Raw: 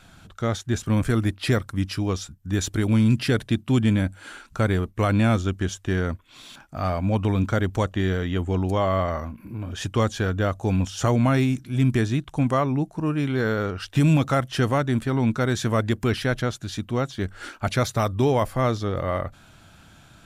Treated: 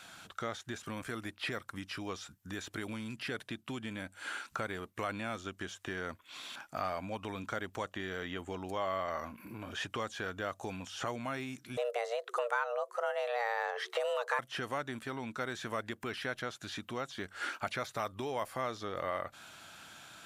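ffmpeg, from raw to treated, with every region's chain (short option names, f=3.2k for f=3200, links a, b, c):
-filter_complex "[0:a]asettb=1/sr,asplit=3[a][b][c];[a]atrim=end=11.774[d];[b]atrim=start=11.77:end=14.39,asetpts=PTS-STARTPTS,afade=t=in:d=0.004:c=qsin,afade=t=out:st=2.616:d=0.004:c=qsin,equalizer=f=910:t=o:w=0.58:g=8,afreqshift=350[e];[c]atrim=start=14.386[f];[d][e]acrossfade=d=0.004:c1=hsin:c2=qsin[g];[g][f]acrossfade=d=0.004:c1=qsin:c2=hsin,acompressor=threshold=-30dB:ratio=6,highpass=f=880:p=1,acrossover=split=2900[h][i];[i]acompressor=threshold=-51dB:ratio=4:attack=1:release=60[j];[h][j]amix=inputs=2:normalize=0,volume=3dB"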